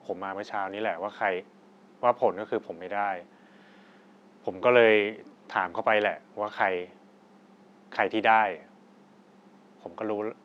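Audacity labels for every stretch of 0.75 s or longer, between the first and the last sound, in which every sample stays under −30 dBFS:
3.180000	4.480000	silence
6.840000	7.920000	silence
8.550000	9.860000	silence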